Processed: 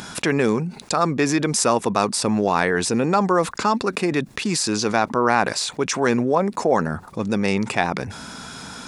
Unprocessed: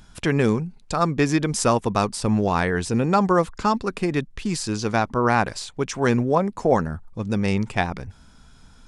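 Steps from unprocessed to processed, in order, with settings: Bessel high-pass 240 Hz, order 2; notch 3100 Hz, Q 14; fast leveller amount 50%

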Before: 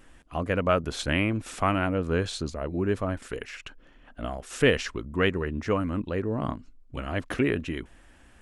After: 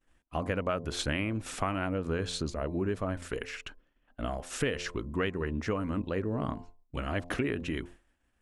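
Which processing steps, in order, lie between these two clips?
de-hum 87.57 Hz, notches 12; expander -41 dBFS; compressor 6:1, threshold -27 dBFS, peak gain reduction 11.5 dB

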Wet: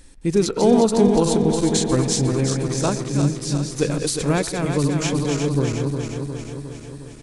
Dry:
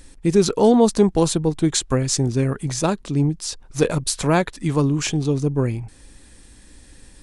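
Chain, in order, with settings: regenerating reverse delay 0.179 s, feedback 78%, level -5 dB; 3.05–5.02 dynamic EQ 900 Hz, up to -5 dB, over -32 dBFS, Q 1.3; speakerphone echo 0.12 s, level -17 dB; gain -2.5 dB

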